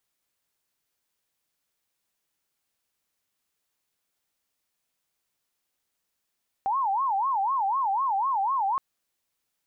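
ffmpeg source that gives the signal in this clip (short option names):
-f lavfi -i "aevalsrc='0.075*sin(2*PI*(936*t-164/(2*PI*4)*sin(2*PI*4*t)))':d=2.12:s=44100"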